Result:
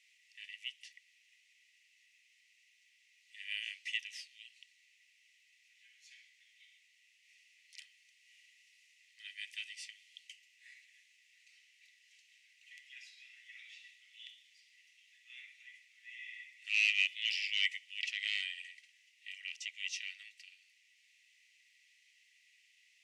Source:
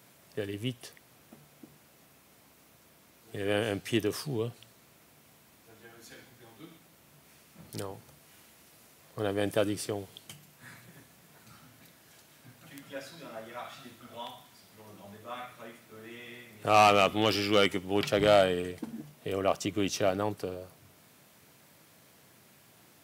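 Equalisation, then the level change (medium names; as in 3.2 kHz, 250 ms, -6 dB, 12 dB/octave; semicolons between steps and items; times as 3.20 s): rippled Chebyshev high-pass 1.9 kHz, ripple 6 dB; tape spacing loss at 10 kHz 26 dB; +9.0 dB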